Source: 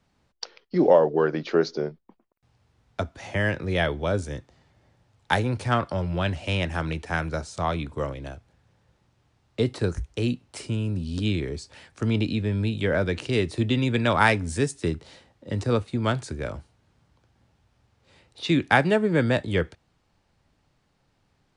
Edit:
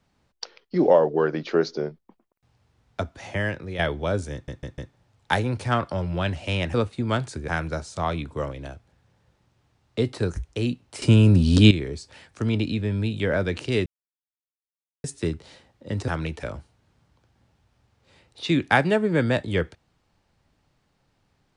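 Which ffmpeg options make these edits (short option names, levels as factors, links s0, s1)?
-filter_complex "[0:a]asplit=14[s0][s1][s2][s3][s4][s5][s6][s7][s8][s9][s10][s11][s12][s13];[s0]atrim=end=3.79,asetpts=PTS-STARTPTS,afade=t=out:st=3.28:d=0.51:silence=0.354813[s14];[s1]atrim=start=3.79:end=4.482,asetpts=PTS-STARTPTS,afade=t=in:d=0.004:c=hsin:silence=0.354813[s15];[s2]atrim=start=4.328:end=4.482[s16];[s3]atrim=start=4.328:end=4.482[s17];[s4]atrim=start=4.328:end=4.482[s18];[s5]atrim=start=4.928:end=6.742[s19];[s6]atrim=start=15.688:end=16.432[s20];[s7]atrim=start=7.088:end=10.632[s21];[s8]atrim=start=10.628:end=11.322,asetpts=PTS-STARTPTS,volume=3.98[s22];[s9]atrim=start=11.318:end=13.47,asetpts=PTS-STARTPTS,afade=t=out:st=2.148:d=0.004:c=hsin[s23];[s10]atrim=start=13.47:end=14.65,asetpts=PTS-STARTPTS,volume=0[s24];[s11]atrim=start=14.65:end=15.692,asetpts=PTS-STARTPTS,afade=t=in:d=0.004:c=hsin[s25];[s12]atrim=start=6.738:end=7.092[s26];[s13]atrim=start=16.428[s27];[s14][s15]concat=n=2:v=0:a=1[s28];[s28][s16]acrossfade=d=0.004:c1=hsin:c2=hsin[s29];[s29][s17]acrossfade=d=0.004:c1=hsin:c2=hsin[s30];[s30][s18]acrossfade=d=0.004:c1=hsin:c2=hsin[s31];[s31][s19]acrossfade=d=0.004:c1=hsin:c2=hsin[s32];[s32][s20]acrossfade=d=0.004:c1=hsin:c2=hsin[s33];[s33][s21]acrossfade=d=0.004:c1=hsin:c2=hsin[s34];[s34][s22]acrossfade=d=0.004:c1=hsin:c2=hsin[s35];[s23][s24][s25]concat=n=3:v=0:a=1[s36];[s35][s36]acrossfade=d=0.004:c1=hsin:c2=hsin[s37];[s37][s26]acrossfade=d=0.004:c1=hsin:c2=hsin[s38];[s38][s27]acrossfade=d=0.004:c1=hsin:c2=hsin"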